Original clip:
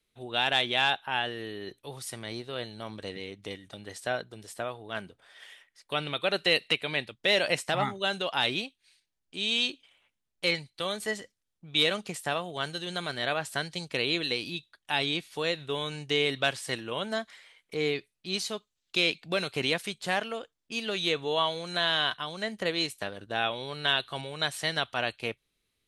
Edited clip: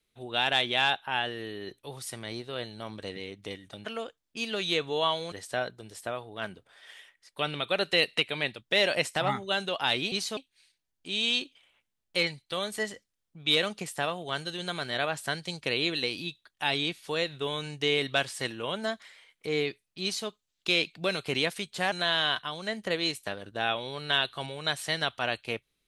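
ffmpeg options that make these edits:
-filter_complex "[0:a]asplit=6[a][b][c][d][e][f];[a]atrim=end=3.852[g];[b]atrim=start=20.198:end=21.672[h];[c]atrim=start=3.848:end=8.652[i];[d]atrim=start=18.308:end=18.562[j];[e]atrim=start=8.648:end=20.202[k];[f]atrim=start=21.668[l];[g][h]acrossfade=d=0.004:c1=hsin:c2=hsin[m];[m][i]acrossfade=d=0.004:c1=hsin:c2=hsin[n];[n][j]acrossfade=d=0.004:c1=hsin:c2=hsin[o];[o][k]acrossfade=d=0.004:c1=hsin:c2=hsin[p];[p][l]acrossfade=d=0.004:c1=hsin:c2=hsin"

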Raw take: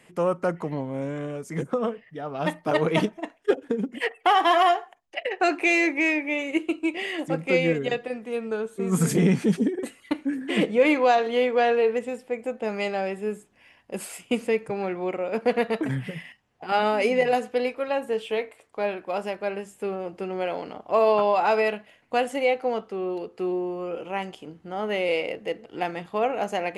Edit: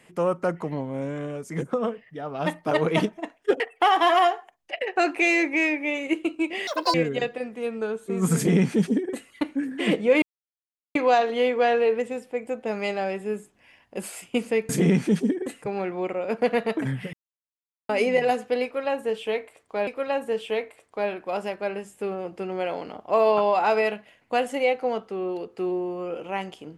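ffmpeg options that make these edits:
-filter_complex "[0:a]asplit=10[a][b][c][d][e][f][g][h][i][j];[a]atrim=end=3.602[k];[b]atrim=start=4.038:end=7.114[l];[c]atrim=start=7.11:end=7.64,asetpts=PTS-STARTPTS,asetrate=85995,aresample=44100,atrim=end_sample=11986,asetpts=PTS-STARTPTS[m];[d]atrim=start=7.636:end=10.92,asetpts=PTS-STARTPTS,afade=t=out:st=3.28:d=0.004:c=hsin,apad=pad_dur=0.73[n];[e]atrim=start=10.92:end=14.662,asetpts=PTS-STARTPTS,afade=t=in:d=0.004:c=hsin[o];[f]atrim=start=9.058:end=9.992[p];[g]atrim=start=14.658:end=16.17,asetpts=PTS-STARTPTS,afade=t=out:st=1.508:d=0.004:c=hsin[q];[h]atrim=start=16.17:end=16.93,asetpts=PTS-STARTPTS,volume=0[r];[i]atrim=start=16.93:end=18.912,asetpts=PTS-STARTPTS,afade=t=in:d=0.004:c=hsin[s];[j]atrim=start=17.678[t];[k][l]acrossfade=d=0.004:c1=hsin:c2=hsin[u];[u][m]acrossfade=d=0.004:c1=hsin:c2=hsin[v];[n][o]concat=n=2:v=0:a=1[w];[v][w]acrossfade=d=0.004:c1=hsin:c2=hsin[x];[x][p]acrossfade=d=0.004:c1=hsin:c2=hsin[y];[q][r][s]concat=n=3:v=0:a=1[z];[y][z]acrossfade=d=0.004:c1=hsin:c2=hsin[aa];[aa][t]acrossfade=d=0.004:c1=hsin:c2=hsin"

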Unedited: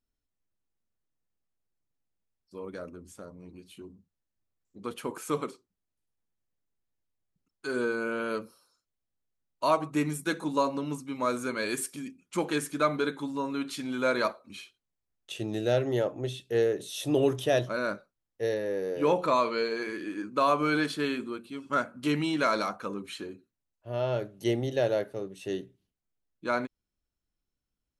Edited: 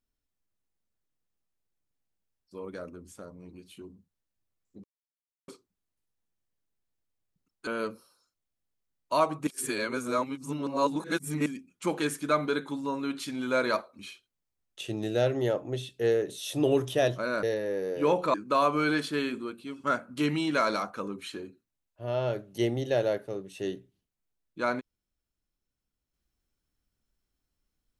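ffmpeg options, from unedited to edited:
-filter_complex "[0:a]asplit=8[a][b][c][d][e][f][g][h];[a]atrim=end=4.84,asetpts=PTS-STARTPTS,afade=t=out:st=4.836:d=0.004:c=hsin[i];[b]atrim=start=4.84:end=5.48,asetpts=PTS-STARTPTS,volume=0[j];[c]atrim=start=5.48:end=7.672,asetpts=PTS-STARTPTS,afade=t=in:d=0.004:c=hsin[k];[d]atrim=start=8.178:end=9.982[l];[e]atrim=start=9.978:end=11.972,asetpts=PTS-STARTPTS,areverse[m];[f]atrim=start=11.968:end=17.942[n];[g]atrim=start=18.428:end=19.342[o];[h]atrim=start=20.198[p];[i][j][k]concat=n=3:v=0:a=1[q];[q][l]acrossfade=d=0.004:c1=hsin:c2=hsin[r];[r][m]acrossfade=d=0.004:c1=hsin:c2=hsin[s];[s][n]acrossfade=d=0.004:c1=hsin:c2=hsin[t];[t][o]acrossfade=d=0.004:c1=hsin:c2=hsin[u];[u][p]acrossfade=d=0.004:c1=hsin:c2=hsin"

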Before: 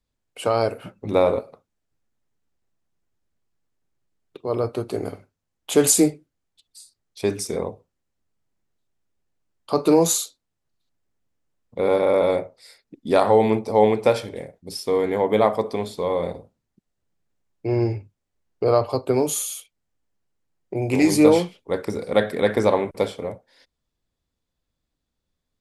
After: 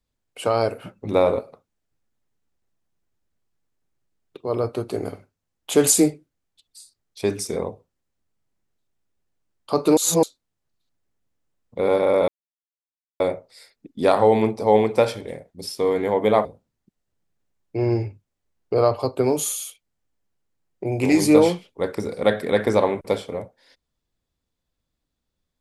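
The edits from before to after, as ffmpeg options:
-filter_complex "[0:a]asplit=5[a][b][c][d][e];[a]atrim=end=9.972[f];[b]atrim=start=9.968:end=10.232,asetpts=PTS-STARTPTS,areverse[g];[c]atrim=start=10.228:end=12.28,asetpts=PTS-STARTPTS,afade=t=out:st=2.048:d=0.004:c=hsin,apad=pad_dur=0.92[h];[d]atrim=start=12.28:end=15.532,asetpts=PTS-STARTPTS,afade=t=in:d=0.004:c=hsin[i];[e]atrim=start=16.348[j];[f][g]acrossfade=d=0.004:c1=hsin:c2=hsin[k];[h][i]concat=n=2:v=0:a=1[l];[k][l]acrossfade=d=0.004:c1=hsin:c2=hsin[m];[m][j]acrossfade=d=0.004:c1=hsin:c2=hsin"

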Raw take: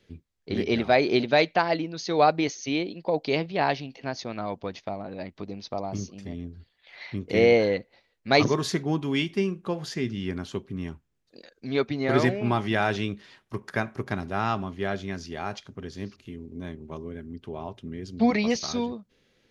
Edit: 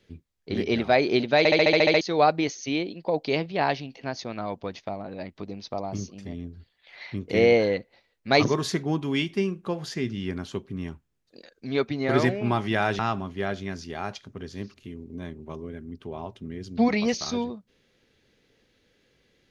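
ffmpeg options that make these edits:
-filter_complex "[0:a]asplit=11[a][b][c][d][e][f][g][h][i][j][k];[a]atrim=end=1.452[l];[b]atrim=start=1.378:end=1.452[m];[c]atrim=start=1.378:end=1.452[n];[d]atrim=start=1.378:end=1.452[o];[e]atrim=start=1.378:end=1.452[p];[f]atrim=start=1.378:end=1.452[q];[g]atrim=start=1.378:end=1.452[r];[h]atrim=start=1.378:end=1.452[s];[i]atrim=start=1.378:end=1.452[t];[j]atrim=start=2.008:end=12.992[u];[k]atrim=start=14.408[v];[l][m]acrossfade=d=0.004:c1=hsin:c2=hsin[w];[w][n]acrossfade=d=0.004:c1=hsin:c2=hsin[x];[x][o]acrossfade=d=0.004:c1=hsin:c2=hsin[y];[y][p]acrossfade=d=0.004:c1=hsin:c2=hsin[z];[z][q]acrossfade=d=0.004:c1=hsin:c2=hsin[aa];[aa][r]acrossfade=d=0.004:c1=hsin:c2=hsin[ab];[ab][s]acrossfade=d=0.004:c1=hsin:c2=hsin[ac];[ac][t]acrossfade=d=0.004:c1=hsin:c2=hsin[ad];[ad][u]acrossfade=d=0.004:c1=hsin:c2=hsin[ae];[ae][v]acrossfade=d=0.004:c1=hsin:c2=hsin"

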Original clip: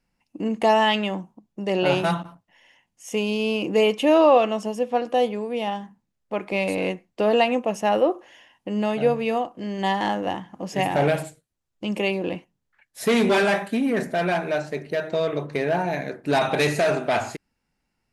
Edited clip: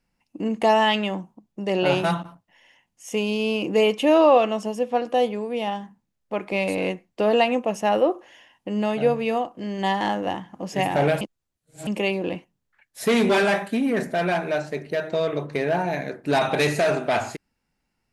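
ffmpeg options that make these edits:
-filter_complex "[0:a]asplit=3[a][b][c];[a]atrim=end=11.212[d];[b]atrim=start=11.208:end=11.872,asetpts=PTS-STARTPTS,areverse[e];[c]atrim=start=11.868[f];[d][e]acrossfade=d=0.004:c1=hsin:c2=hsin[g];[g][f]acrossfade=d=0.004:c1=hsin:c2=hsin"

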